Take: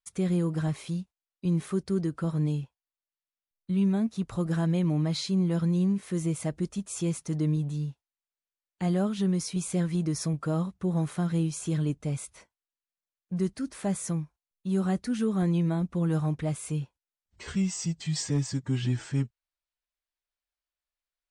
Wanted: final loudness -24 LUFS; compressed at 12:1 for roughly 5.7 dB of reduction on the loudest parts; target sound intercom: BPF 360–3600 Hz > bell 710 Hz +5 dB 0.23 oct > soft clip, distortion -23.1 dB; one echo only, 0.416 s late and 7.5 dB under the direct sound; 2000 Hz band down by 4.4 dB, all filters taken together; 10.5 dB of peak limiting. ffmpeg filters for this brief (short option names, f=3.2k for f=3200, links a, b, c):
-af "equalizer=f=2k:t=o:g=-5.5,acompressor=threshold=-28dB:ratio=12,alimiter=level_in=8.5dB:limit=-24dB:level=0:latency=1,volume=-8.5dB,highpass=360,lowpass=3.6k,equalizer=f=710:t=o:w=0.23:g=5,aecho=1:1:416:0.422,asoftclip=threshold=-35.5dB,volume=24.5dB"